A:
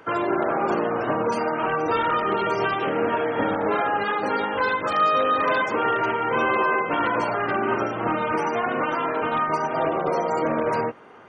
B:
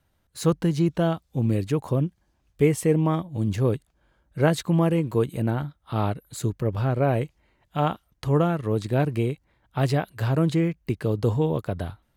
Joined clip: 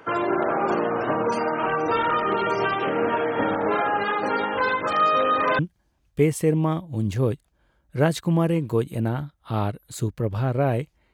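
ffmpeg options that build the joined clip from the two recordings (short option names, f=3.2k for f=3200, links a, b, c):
-filter_complex "[0:a]apad=whole_dur=11.13,atrim=end=11.13,atrim=end=5.592[a];[1:a]atrim=start=2.008:end=7.55[b];[a][b]acrossfade=d=0.004:c1=hsin:c2=hsin"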